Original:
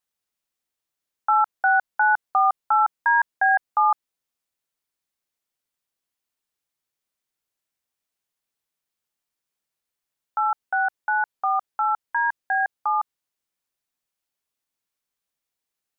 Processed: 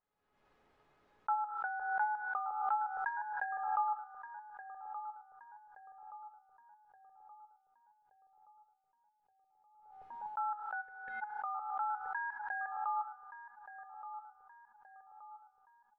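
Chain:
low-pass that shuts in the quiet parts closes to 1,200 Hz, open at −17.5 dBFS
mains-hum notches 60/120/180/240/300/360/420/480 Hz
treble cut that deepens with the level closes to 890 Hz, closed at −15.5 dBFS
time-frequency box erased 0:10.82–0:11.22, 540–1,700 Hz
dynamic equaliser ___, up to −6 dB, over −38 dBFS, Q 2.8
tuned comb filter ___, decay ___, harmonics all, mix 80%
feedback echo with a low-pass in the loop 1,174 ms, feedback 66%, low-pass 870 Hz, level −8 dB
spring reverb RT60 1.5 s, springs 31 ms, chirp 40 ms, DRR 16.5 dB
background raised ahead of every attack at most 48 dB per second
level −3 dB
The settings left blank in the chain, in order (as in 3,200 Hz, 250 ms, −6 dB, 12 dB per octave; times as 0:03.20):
700 Hz, 420 Hz, 0.2 s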